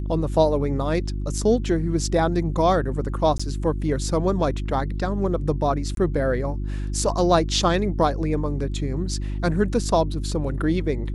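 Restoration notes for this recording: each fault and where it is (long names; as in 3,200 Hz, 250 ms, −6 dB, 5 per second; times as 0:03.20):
mains hum 50 Hz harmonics 7 −27 dBFS
0:03.38–0:03.40: drop-out 15 ms
0:05.95–0:05.97: drop-out 22 ms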